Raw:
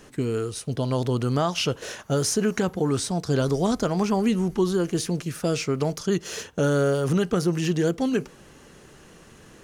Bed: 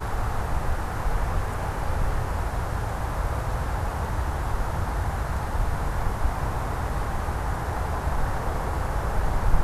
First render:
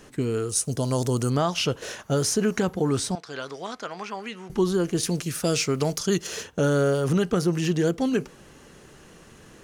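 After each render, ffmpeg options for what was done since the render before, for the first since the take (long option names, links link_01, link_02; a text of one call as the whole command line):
ffmpeg -i in.wav -filter_complex "[0:a]asettb=1/sr,asplit=3[link_01][link_02][link_03];[link_01]atrim=end=0.494[link_04];[link_02]atrim=start=0.49:end=1.3,asetpts=PTS-STARTPTS,afade=type=in:duration=0.004:curve=qsin,afade=type=out:start_time=0.806:duration=0.004:curve=qsin,highshelf=frequency=4900:width_type=q:width=1.5:gain=10.5[link_05];[link_03]atrim=start=1.296[link_06];[link_04][link_05]acrossfade=duration=0.004:curve1=hsin:curve2=qsin[link_07];[link_07][link_06]acrossfade=duration=0.004:curve1=qsin:curve2=hsin,asettb=1/sr,asplit=3[link_08][link_09][link_10];[link_08]atrim=end=3.154[link_11];[link_09]atrim=start=3.15:end=4.5,asetpts=PTS-STARTPTS,afade=type=in:duration=0.004:curve=qsin,afade=type=out:start_time=1.346:duration=0.004:curve=qsin,bandpass=frequency=2000:width_type=q:width=0.9[link_12];[link_10]atrim=start=4.496[link_13];[link_11][link_12]acrossfade=duration=0.004:curve1=hsin:curve2=qsin[link_14];[link_14][link_13]acrossfade=duration=0.004:curve1=qsin:curve2=hsin,asettb=1/sr,asplit=3[link_15][link_16][link_17];[link_15]atrim=end=5.034[link_18];[link_16]atrim=start=5.03:end=6.27,asetpts=PTS-STARTPTS,afade=type=in:duration=0.004:curve=qsin,afade=type=out:start_time=1.236:duration=0.004:curve=qsin,highshelf=frequency=3100:gain=8[link_19];[link_17]atrim=start=6.266[link_20];[link_18][link_19]acrossfade=duration=0.004:curve1=hsin:curve2=qsin[link_21];[link_21][link_20]acrossfade=duration=0.004:curve1=qsin:curve2=hsin" out.wav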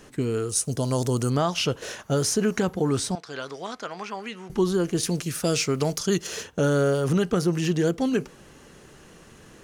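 ffmpeg -i in.wav -af anull out.wav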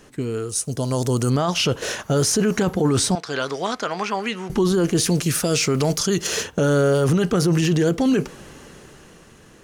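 ffmpeg -i in.wav -af "dynaudnorm=framelen=200:gausssize=13:maxgain=11.5dB,alimiter=limit=-11.5dB:level=0:latency=1:release=13" out.wav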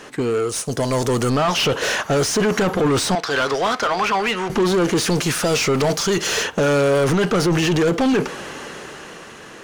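ffmpeg -i in.wav -filter_complex "[0:a]asplit=2[link_01][link_02];[link_02]highpass=frequency=720:poles=1,volume=21dB,asoftclip=type=tanh:threshold=-11dB[link_03];[link_01][link_03]amix=inputs=2:normalize=0,lowpass=frequency=3100:poles=1,volume=-6dB" out.wav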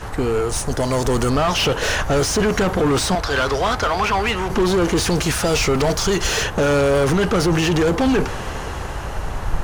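ffmpeg -i in.wav -i bed.wav -filter_complex "[1:a]volume=-1.5dB[link_01];[0:a][link_01]amix=inputs=2:normalize=0" out.wav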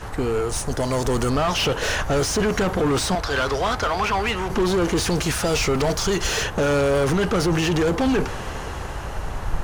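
ffmpeg -i in.wav -af "volume=-3dB" out.wav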